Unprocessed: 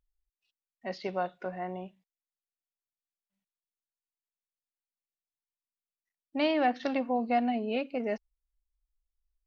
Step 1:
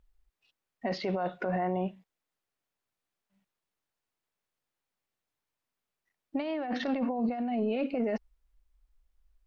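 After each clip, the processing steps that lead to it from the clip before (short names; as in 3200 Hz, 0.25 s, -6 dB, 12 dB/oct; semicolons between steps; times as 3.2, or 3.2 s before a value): high shelf 3400 Hz -12 dB; negative-ratio compressor -37 dBFS, ratio -1; limiter -29.5 dBFS, peak gain reduction 7.5 dB; gain +8 dB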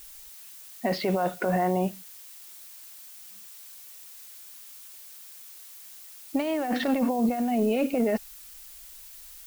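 added noise blue -52 dBFS; gain +5.5 dB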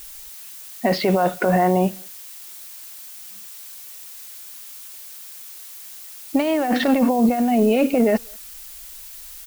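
speakerphone echo 0.2 s, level -29 dB; gain +7.5 dB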